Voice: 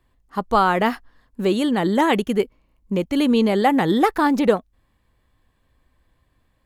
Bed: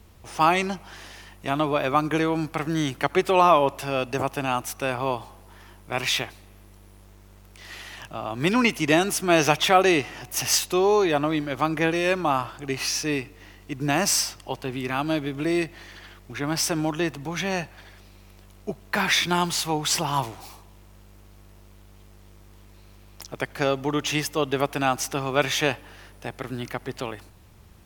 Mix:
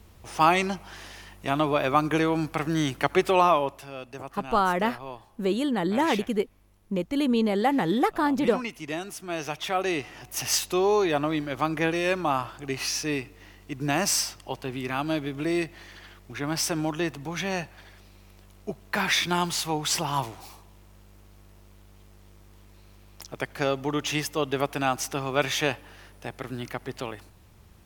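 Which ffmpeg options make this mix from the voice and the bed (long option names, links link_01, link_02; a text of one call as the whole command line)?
ffmpeg -i stem1.wav -i stem2.wav -filter_complex "[0:a]adelay=4000,volume=-6dB[link_01];[1:a]volume=10dB,afade=type=out:start_time=3.25:duration=0.63:silence=0.237137,afade=type=in:start_time=9.48:duration=1.22:silence=0.298538[link_02];[link_01][link_02]amix=inputs=2:normalize=0" out.wav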